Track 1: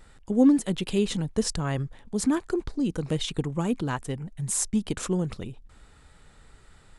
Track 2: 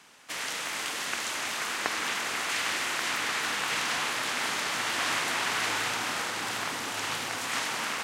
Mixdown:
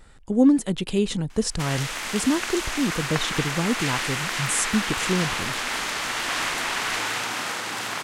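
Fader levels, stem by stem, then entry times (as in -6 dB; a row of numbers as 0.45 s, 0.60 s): +2.0 dB, +2.5 dB; 0.00 s, 1.30 s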